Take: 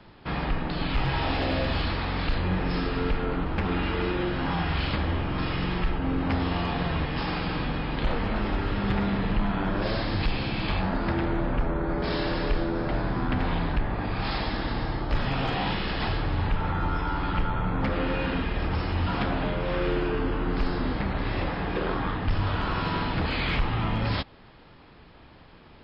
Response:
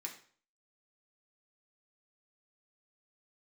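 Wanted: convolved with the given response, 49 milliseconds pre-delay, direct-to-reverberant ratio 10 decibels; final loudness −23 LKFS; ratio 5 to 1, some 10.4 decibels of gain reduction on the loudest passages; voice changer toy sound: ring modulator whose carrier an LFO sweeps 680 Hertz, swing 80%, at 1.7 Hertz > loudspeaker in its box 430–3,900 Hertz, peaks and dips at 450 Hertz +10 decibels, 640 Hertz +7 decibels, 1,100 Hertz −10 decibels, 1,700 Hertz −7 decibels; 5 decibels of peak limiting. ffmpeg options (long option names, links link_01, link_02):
-filter_complex "[0:a]acompressor=threshold=-32dB:ratio=5,alimiter=level_in=4.5dB:limit=-24dB:level=0:latency=1,volume=-4.5dB,asplit=2[link_01][link_02];[1:a]atrim=start_sample=2205,adelay=49[link_03];[link_02][link_03]afir=irnorm=-1:irlink=0,volume=-8dB[link_04];[link_01][link_04]amix=inputs=2:normalize=0,aeval=exprs='val(0)*sin(2*PI*680*n/s+680*0.8/1.7*sin(2*PI*1.7*n/s))':channel_layout=same,highpass=430,equalizer=frequency=450:width_type=q:width=4:gain=10,equalizer=frequency=640:width_type=q:width=4:gain=7,equalizer=frequency=1100:width_type=q:width=4:gain=-10,equalizer=frequency=1700:width_type=q:width=4:gain=-7,lowpass=frequency=3900:width=0.5412,lowpass=frequency=3900:width=1.3066,volume=16dB"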